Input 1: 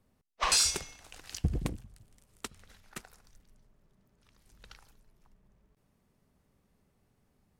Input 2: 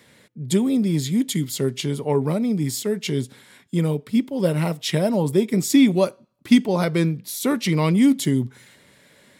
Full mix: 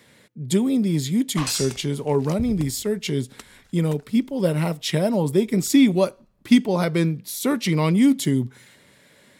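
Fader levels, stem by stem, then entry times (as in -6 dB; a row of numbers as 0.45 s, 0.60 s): -1.5 dB, -0.5 dB; 0.95 s, 0.00 s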